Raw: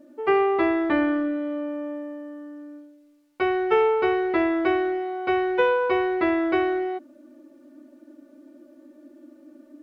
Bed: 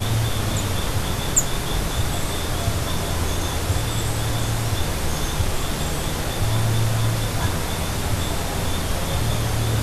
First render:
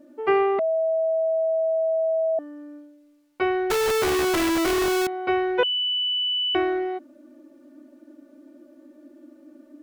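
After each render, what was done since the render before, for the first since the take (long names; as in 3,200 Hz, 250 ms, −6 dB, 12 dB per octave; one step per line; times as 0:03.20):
0:00.59–0:02.39: beep over 647 Hz −19.5 dBFS
0:03.70–0:05.07: comparator with hysteresis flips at −38.5 dBFS
0:05.63–0:06.55: beep over 2,980 Hz −21.5 dBFS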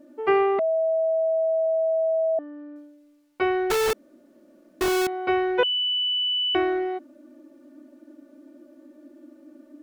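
0:01.66–0:02.76: low-pass filter 2,900 Hz
0:03.93–0:04.81: fill with room tone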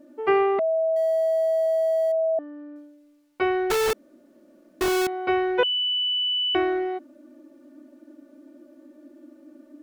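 0:00.96–0:02.12: mu-law and A-law mismatch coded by mu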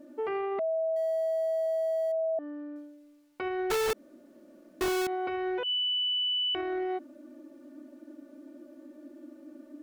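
downward compressor, threshold −24 dBFS, peak gain reduction 8 dB
brickwall limiter −26 dBFS, peak gain reduction 10 dB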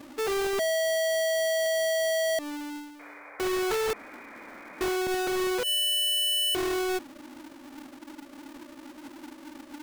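each half-wave held at its own peak
0:02.99–0:04.97: sound drawn into the spectrogram noise 390–2,500 Hz −47 dBFS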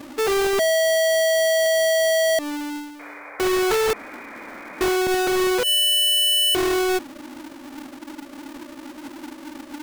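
level +7.5 dB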